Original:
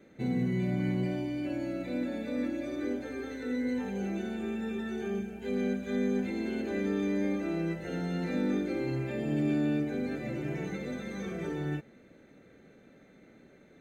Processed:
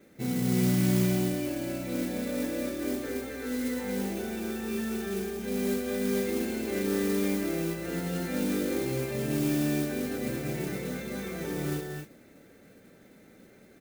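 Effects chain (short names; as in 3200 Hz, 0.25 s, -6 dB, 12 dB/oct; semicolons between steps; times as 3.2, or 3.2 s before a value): on a send: loudspeakers at several distances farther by 59 m -12 dB, 72 m -7 dB, 83 m -5 dB; on the sum: modulation noise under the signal 13 dB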